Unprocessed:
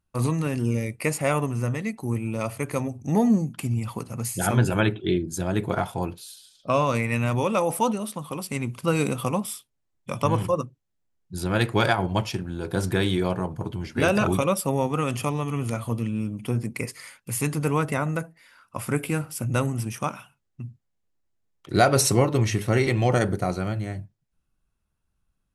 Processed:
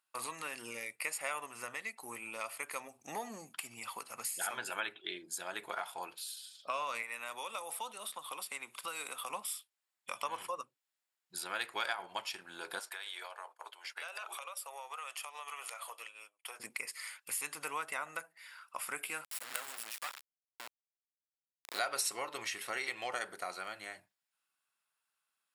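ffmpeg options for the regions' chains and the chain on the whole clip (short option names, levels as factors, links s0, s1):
-filter_complex "[0:a]asettb=1/sr,asplit=3[s0][s1][s2];[s0]atrim=end=7.024[s3];[s1]atrim=start=7.02:end=9.3,asetpts=PTS-STARTPTS,afade=t=in:d=0.004:c=qsin,afade=t=out:st=2.276:d=0.004:c=qsin,equalizer=f=3600:w=6.7:g=8.5,acrossover=split=270|660|2100|6900[s4][s5][s6][s7][s8];[s4]acompressor=threshold=0.01:ratio=3[s9];[s5]acompressor=threshold=0.0158:ratio=3[s10];[s6]acompressor=threshold=0.0141:ratio=3[s11];[s7]acompressor=threshold=0.00398:ratio=3[s12];[s8]acompressor=threshold=0.00891:ratio=3[s13];[s9][s10][s11][s12][s13]amix=inputs=5:normalize=0[s14];[s2]atrim=start=9.296[s15];[s3][s14]acrossfade=d=0.004:c1=hsin:c2=qsin[s16];[s16][s15]acrossfade=d=0.004:c1=qsin:c2=hsin,asettb=1/sr,asplit=3[s17][s18][s19];[s17]atrim=end=12.794[s20];[s18]atrim=start=12.79:end=16.6,asetpts=PTS-STARTPTS,afade=t=in:d=0.004:c=qsin,afade=t=out:st=3.806:d=0.004:c=qsin,highpass=f=520:w=0.5412,highpass=f=520:w=1.3066,acompressor=threshold=0.0178:ratio=12:attack=3.2:release=140:knee=1:detection=peak,agate=range=0.0224:threshold=0.00794:ratio=3:release=100:detection=peak[s21];[s19]atrim=start=16.596[s22];[s20][s21]acrossfade=d=0.004:c1=hsin:c2=qsin[s23];[s23][s22]acrossfade=d=0.004:c1=qsin:c2=hsin,asettb=1/sr,asplit=3[s24][s25][s26];[s24]atrim=end=19.244[s27];[s25]atrim=start=19.24:end=21.79,asetpts=PTS-STARTPTS,afade=t=in:d=0.004:c=qsin,afade=t=out:st=2.546:d=0.004:c=qsin,bandreject=f=3200:w=12,acrusher=bits=3:dc=4:mix=0:aa=0.000001,highpass=f=200:p=1[s28];[s26]atrim=start=21.786[s29];[s27][s28]acrossfade=d=0.004:c1=hsin:c2=qsin[s30];[s30][s29]acrossfade=d=0.004:c1=qsin:c2=hsin,highpass=1100,bandreject=f=6100:w=8.4,acompressor=threshold=0.00562:ratio=2,volume=1.33"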